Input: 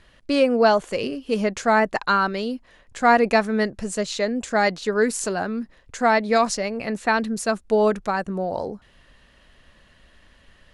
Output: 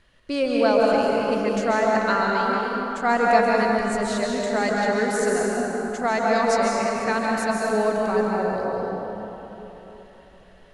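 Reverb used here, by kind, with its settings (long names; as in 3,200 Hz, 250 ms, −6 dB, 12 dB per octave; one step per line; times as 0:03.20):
dense smooth reverb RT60 3.7 s, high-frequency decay 0.5×, pre-delay 120 ms, DRR −3.5 dB
level −5.5 dB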